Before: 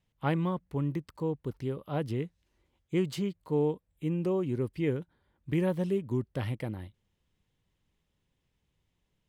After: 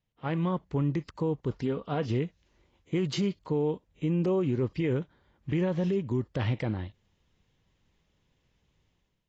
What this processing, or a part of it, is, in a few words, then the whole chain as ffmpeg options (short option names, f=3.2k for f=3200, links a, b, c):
low-bitrate web radio: -filter_complex "[0:a]asettb=1/sr,asplit=3[a][b][c];[a]atrim=end=1.574[d];[b]atrim=start=1.57:end=2.07,asetpts=PTS-STARTPTS,afade=t=in:d=0.004:c=qsin,afade=t=out:st=0.496:d=0.004:c=qsin,aecho=1:1:4.3:0.48,atrim=end_sample=22050[e];[c]atrim=start=2.066[f];[d][e]acrossfade=d=0.004:c1=hsin:c2=qsin[g];[g][f]acrossfade=d=0.004:c1=qsin:c2=hsin,dynaudnorm=f=120:g=7:m=11.5dB,alimiter=limit=-15dB:level=0:latency=1:release=47,volume=-5.5dB" -ar 16000 -c:a aac -b:a 24k